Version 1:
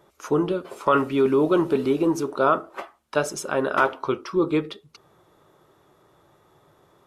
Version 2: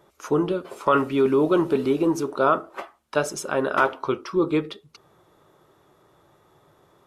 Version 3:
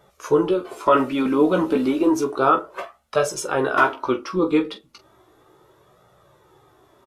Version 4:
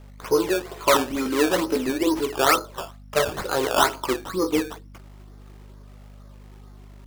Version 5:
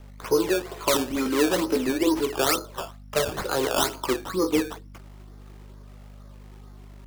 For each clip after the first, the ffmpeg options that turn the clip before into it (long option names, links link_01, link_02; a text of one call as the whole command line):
ffmpeg -i in.wav -af anull out.wav
ffmpeg -i in.wav -filter_complex "[0:a]flanger=delay=1.4:depth=2.8:regen=-26:speed=0.33:shape=triangular,asplit=2[link_01][link_02];[link_02]aecho=0:1:16|44:0.501|0.224[link_03];[link_01][link_03]amix=inputs=2:normalize=0,volume=5.5dB" out.wav
ffmpeg -i in.wav -filter_complex "[0:a]acrossover=split=280[link_01][link_02];[link_01]acompressor=threshold=-35dB:ratio=6[link_03];[link_03][link_02]amix=inputs=2:normalize=0,aeval=exprs='val(0)+0.00794*(sin(2*PI*50*n/s)+sin(2*PI*2*50*n/s)/2+sin(2*PI*3*50*n/s)/3+sin(2*PI*4*50*n/s)/4+sin(2*PI*5*50*n/s)/5)':channel_layout=same,acrusher=samples=15:mix=1:aa=0.000001:lfo=1:lforange=15:lforate=2.2,volume=-1.5dB" out.wav
ffmpeg -i in.wav -filter_complex "[0:a]acrossover=split=460|3000[link_01][link_02][link_03];[link_02]acompressor=threshold=-25dB:ratio=6[link_04];[link_01][link_04][link_03]amix=inputs=3:normalize=0" out.wav